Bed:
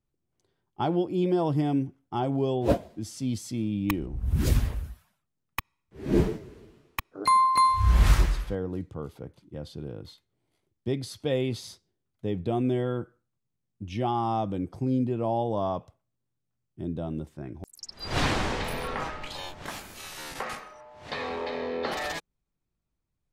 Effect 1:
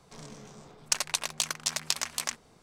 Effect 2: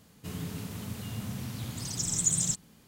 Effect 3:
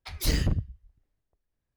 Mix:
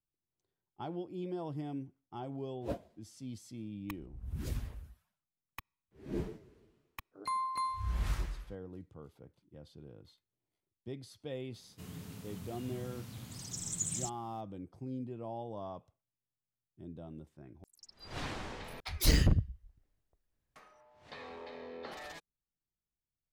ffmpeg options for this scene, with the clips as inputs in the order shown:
ffmpeg -i bed.wav -i cue0.wav -i cue1.wav -i cue2.wav -filter_complex "[0:a]volume=-14.5dB,asplit=2[link_01][link_02];[link_01]atrim=end=18.804[link_03];[3:a]atrim=end=1.76,asetpts=PTS-STARTPTS,volume=-0.5dB[link_04];[link_02]atrim=start=20.556[link_05];[2:a]atrim=end=2.87,asetpts=PTS-STARTPTS,volume=-9.5dB,afade=type=in:duration=0.004:curve=hsin,afade=type=out:start_time=2.866:duration=0.004:curve=hsin,adelay=508914S[link_06];[link_03][link_04]acrossfade=duration=0.004:curve1=hsin:curve2=hsin[link_07];[link_07][link_05]acrossfade=duration=0.004:curve1=hsin:curve2=hsin[link_08];[link_08][link_06]amix=inputs=2:normalize=0" out.wav

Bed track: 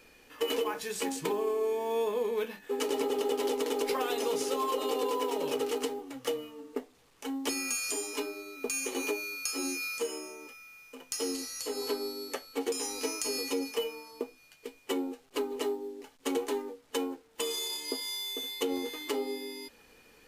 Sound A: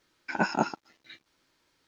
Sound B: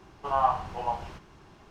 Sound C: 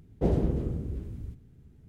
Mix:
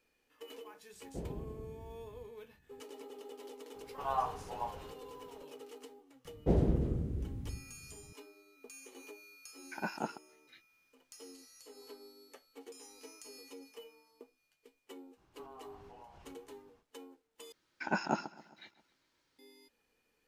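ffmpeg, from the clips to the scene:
ffmpeg -i bed.wav -i cue0.wav -i cue1.wav -i cue2.wav -filter_complex "[3:a]asplit=2[link_01][link_02];[2:a]asplit=2[link_03][link_04];[1:a]asplit=2[link_05][link_06];[0:a]volume=-19dB[link_07];[link_04]acompressor=threshold=-34dB:ratio=6:attack=3.2:release=140:knee=1:detection=peak[link_08];[link_06]aecho=1:1:133|266|399|532|665:0.1|0.057|0.0325|0.0185|0.0106[link_09];[link_07]asplit=2[link_10][link_11];[link_10]atrim=end=17.524[link_12];[link_09]atrim=end=1.87,asetpts=PTS-STARTPTS,volume=-6.5dB[link_13];[link_11]atrim=start=19.386[link_14];[link_01]atrim=end=1.88,asetpts=PTS-STARTPTS,volume=-17dB,afade=type=in:duration=0.004:curve=hsin,afade=type=out:start_time=1.876:duration=0.004:curve=hsin,adelay=930[link_15];[link_03]atrim=end=1.7,asetpts=PTS-STARTPTS,volume=-9.5dB,afade=type=in:duration=0.004:curve=hsin,afade=type=out:start_time=1.696:duration=0.004:curve=hsin,adelay=3740[link_16];[link_02]atrim=end=1.88,asetpts=PTS-STARTPTS,volume=-3dB,afade=type=in:duration=0.004:curve=hsin,afade=type=out:start_time=1.876:duration=0.004:curve=hsin,adelay=6250[link_17];[link_05]atrim=end=1.87,asetpts=PTS-STARTPTS,volume=-11.5dB,afade=type=in:duration=0.004:curve=hsin,afade=type=out:start_time=1.866:duration=0.004:curve=hsin,adelay=9430[link_18];[link_08]atrim=end=1.7,asetpts=PTS-STARTPTS,volume=-17dB,afade=type=in:duration=0.05,afade=type=out:start_time=1.65:duration=0.05,adelay=15150[link_19];[link_12][link_13]acrossfade=duration=0.004:curve1=hsin:curve2=hsin[link_20];[link_20][link_14]acrossfade=duration=0.004:curve1=hsin:curve2=hsin[link_21];[link_21][link_15][link_16][link_17][link_18][link_19]amix=inputs=6:normalize=0" out.wav

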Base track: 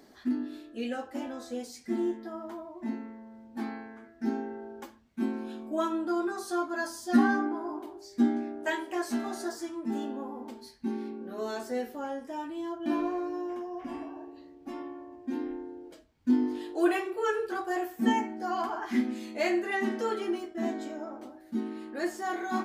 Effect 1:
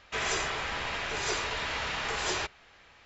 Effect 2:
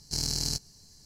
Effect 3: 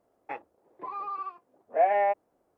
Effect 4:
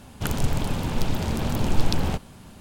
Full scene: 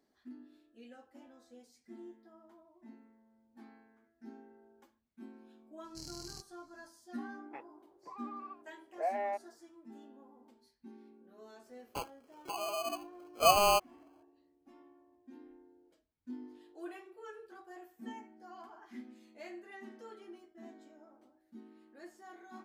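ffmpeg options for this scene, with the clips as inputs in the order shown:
ffmpeg -i bed.wav -i cue0.wav -i cue1.wav -i cue2.wav -filter_complex "[3:a]asplit=2[link_01][link_02];[0:a]volume=-20dB[link_03];[link_02]acrusher=samples=24:mix=1:aa=0.000001[link_04];[2:a]atrim=end=1.05,asetpts=PTS-STARTPTS,volume=-18dB,afade=type=in:duration=0.004:curve=hsin,afade=type=out:start_time=1.046:duration=0.004:curve=hsin,adelay=5840[link_05];[link_01]atrim=end=2.57,asetpts=PTS-STARTPTS,volume=-11.5dB,afade=type=in:duration=0.004:curve=hsin,afade=type=out:start_time=2.566:duration=0.004:curve=hsin,adelay=7240[link_06];[link_04]atrim=end=2.57,asetpts=PTS-STARTPTS,volume=-2dB,afade=type=in:duration=0.004:curve=hsin,afade=type=out:start_time=2.566:duration=0.004:curve=hsin,adelay=11660[link_07];[link_03][link_05][link_06][link_07]amix=inputs=4:normalize=0" out.wav

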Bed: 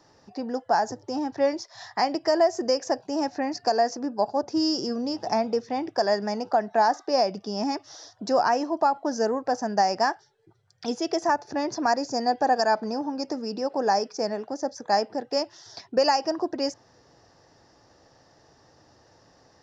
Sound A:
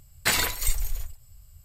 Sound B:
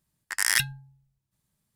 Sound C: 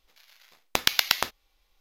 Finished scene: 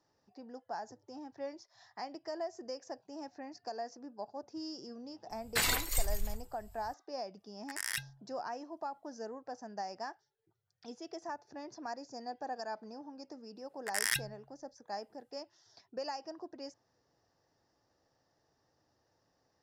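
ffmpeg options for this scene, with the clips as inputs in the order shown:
ffmpeg -i bed.wav -i cue0.wav -i cue1.wav -filter_complex "[2:a]asplit=2[link_01][link_02];[0:a]volume=-18.5dB[link_03];[1:a]alimiter=limit=-11dB:level=0:latency=1:release=71,atrim=end=1.64,asetpts=PTS-STARTPTS,volume=-6dB,afade=type=in:duration=0.004:curve=hsin,afade=type=out:start_time=1.636:duration=0.004:curve=hsin,adelay=5300[link_04];[link_01]atrim=end=1.75,asetpts=PTS-STARTPTS,volume=-14dB,afade=type=in:duration=0.004:curve=hsin,afade=type=out:start_time=1.746:duration=0.004:curve=hsin,adelay=325458S[link_05];[link_02]atrim=end=1.75,asetpts=PTS-STARTPTS,volume=-9dB,afade=type=in:duration=0.004:curve=hsin,afade=type=out:start_time=1.746:duration=0.004:curve=hsin,adelay=13560[link_06];[link_03][link_04][link_05][link_06]amix=inputs=4:normalize=0" out.wav

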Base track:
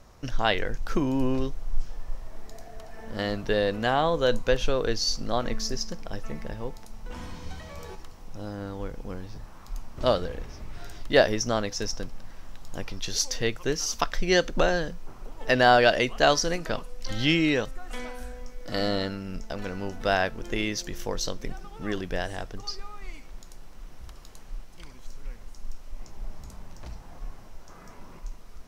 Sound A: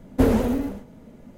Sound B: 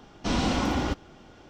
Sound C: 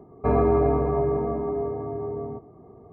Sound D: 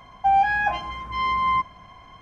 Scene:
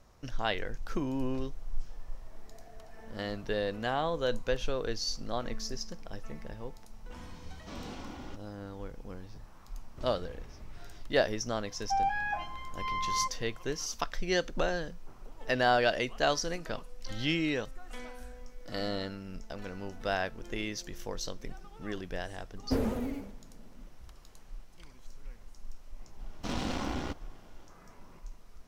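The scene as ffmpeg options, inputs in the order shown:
ffmpeg -i bed.wav -i cue0.wav -i cue1.wav -i cue2.wav -i cue3.wav -filter_complex "[2:a]asplit=2[link_01][link_02];[0:a]volume=-7.5dB[link_03];[link_02]aeval=exprs='if(lt(val(0),0),0.251*val(0),val(0))':channel_layout=same[link_04];[link_01]atrim=end=1.49,asetpts=PTS-STARTPTS,volume=-18dB,afade=type=in:duration=0.004:curve=hsin,afade=type=out:start_time=1.486:duration=0.004:curve=hsin,adelay=7420[link_05];[4:a]atrim=end=2.21,asetpts=PTS-STARTPTS,volume=-11dB,afade=type=in:duration=0.004:curve=hsin,afade=type=out:start_time=2.206:duration=0.004:curve=hsin,adelay=11660[link_06];[1:a]atrim=end=1.37,asetpts=PTS-STARTPTS,volume=-11.5dB,afade=type=in:duration=0.004:curve=hsin,afade=type=out:start_time=1.366:duration=0.004:curve=hsin,adelay=22520[link_07];[link_04]atrim=end=1.49,asetpts=PTS-STARTPTS,volume=-5.5dB,afade=type=in:duration=0.004:curve=hsin,afade=type=out:start_time=1.486:duration=0.004:curve=hsin,adelay=26190[link_08];[link_03][link_05][link_06][link_07][link_08]amix=inputs=5:normalize=0" out.wav

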